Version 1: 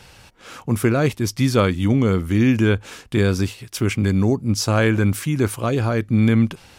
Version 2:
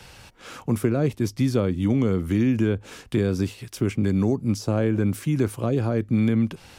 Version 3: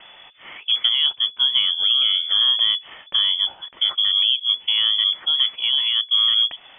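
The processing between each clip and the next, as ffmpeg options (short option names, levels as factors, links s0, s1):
-filter_complex "[0:a]acrossover=split=150|630[s0][s1][s2];[s0]acompressor=threshold=0.0355:ratio=4[s3];[s1]acompressor=threshold=0.112:ratio=4[s4];[s2]acompressor=threshold=0.0126:ratio=4[s5];[s3][s4][s5]amix=inputs=3:normalize=0"
-af "lowpass=f=3000:t=q:w=0.5098,lowpass=f=3000:t=q:w=0.6013,lowpass=f=3000:t=q:w=0.9,lowpass=f=3000:t=q:w=2.563,afreqshift=-3500,volume=1.33"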